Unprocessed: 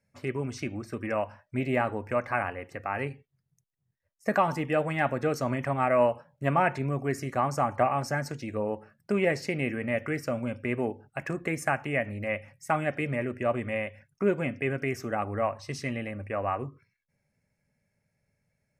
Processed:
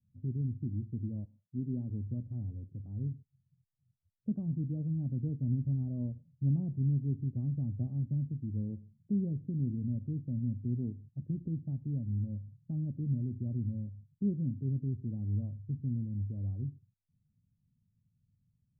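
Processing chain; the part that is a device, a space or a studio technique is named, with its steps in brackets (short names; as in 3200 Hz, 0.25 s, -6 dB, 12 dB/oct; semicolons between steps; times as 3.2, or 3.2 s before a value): the neighbour's flat through the wall (LPF 230 Hz 24 dB/oct; bell 100 Hz +6 dB 0.85 oct); 1.24–1.89 HPF 310 Hz -> 130 Hz 12 dB/oct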